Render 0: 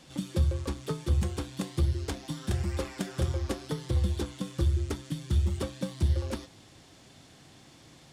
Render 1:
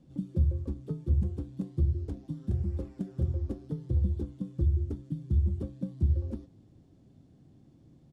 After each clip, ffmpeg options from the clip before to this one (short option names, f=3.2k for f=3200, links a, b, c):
-af "firequalizer=gain_entry='entry(230,0);entry(480,-9);entry(950,-19);entry(2000,-25)':delay=0.05:min_phase=1"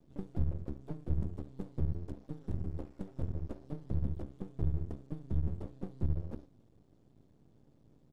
-af "aeval=exprs='max(val(0),0)':c=same,volume=-2.5dB"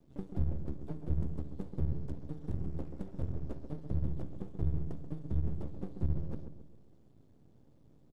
-filter_complex "[0:a]asplit=2[a][b];[b]adelay=134,lowpass=f=1.2k:p=1,volume=-7.5dB,asplit=2[c][d];[d]adelay=134,lowpass=f=1.2k:p=1,volume=0.48,asplit=2[e][f];[f]adelay=134,lowpass=f=1.2k:p=1,volume=0.48,asplit=2[g][h];[h]adelay=134,lowpass=f=1.2k:p=1,volume=0.48,asplit=2[i][j];[j]adelay=134,lowpass=f=1.2k:p=1,volume=0.48,asplit=2[k][l];[l]adelay=134,lowpass=f=1.2k:p=1,volume=0.48[m];[a][c][e][g][i][k][m]amix=inputs=7:normalize=0"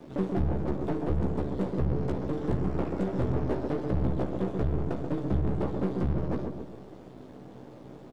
-filter_complex "[0:a]alimiter=limit=-24dB:level=0:latency=1:release=500,asplit=2[a][b];[b]highpass=f=720:p=1,volume=27dB,asoftclip=type=tanh:threshold=-24dB[c];[a][c]amix=inputs=2:normalize=0,lowpass=f=1.5k:p=1,volume=-6dB,asplit=2[d][e];[e]adelay=16,volume=-5.5dB[f];[d][f]amix=inputs=2:normalize=0,volume=6dB"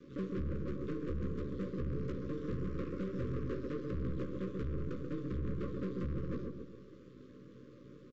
-af "aresample=16000,asoftclip=type=hard:threshold=-24dB,aresample=44100,asuperstop=centerf=770:order=20:qfactor=1.6,volume=-7.5dB"